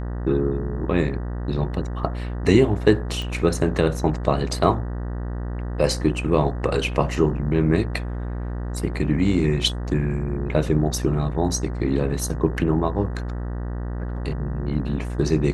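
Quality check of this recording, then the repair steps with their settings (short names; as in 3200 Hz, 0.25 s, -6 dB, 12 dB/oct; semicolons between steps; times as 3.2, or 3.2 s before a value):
buzz 60 Hz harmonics 32 -28 dBFS
3.22 pop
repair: de-click; de-hum 60 Hz, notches 32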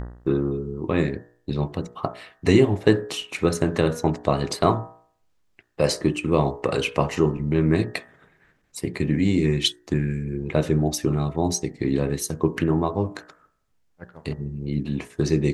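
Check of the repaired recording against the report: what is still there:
none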